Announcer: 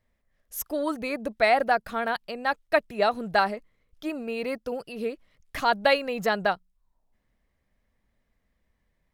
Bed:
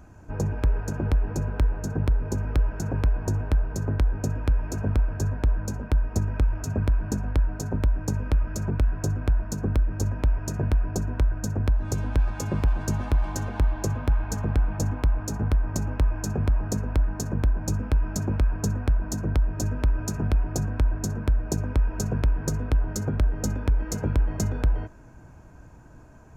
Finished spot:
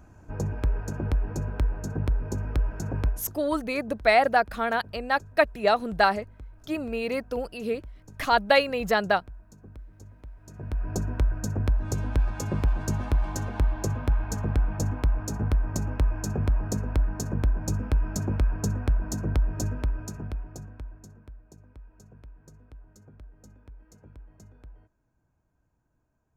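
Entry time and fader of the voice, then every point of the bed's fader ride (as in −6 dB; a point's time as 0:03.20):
2.65 s, +1.5 dB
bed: 0:03.08 −3 dB
0:03.34 −22 dB
0:10.36 −22 dB
0:10.92 −1.5 dB
0:19.61 −1.5 dB
0:21.46 −25.5 dB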